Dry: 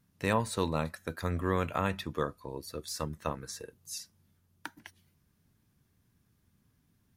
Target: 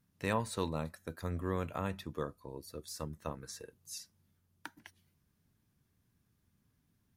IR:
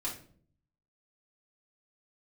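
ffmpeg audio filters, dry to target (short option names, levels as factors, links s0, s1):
-filter_complex "[0:a]asettb=1/sr,asplit=3[s0][s1][s2];[s0]atrim=end=0.694[s3];[s1]atrim=start=0.69:end=3.43,asetpts=PTS-STARTPTS,afade=t=in:d=0.004:c=qsin,afade=t=out:st=2.736:d=0.004:c=qsin,equalizer=f=2200:t=o:w=2.7:g=-5[s4];[s2]atrim=start=3.426[s5];[s3][s4]acrossfade=d=0.004:c1=hsin:c2=qsin[s6];[s6][s5]acrossfade=d=0.004:c1=qsin:c2=hsin,volume=0.596"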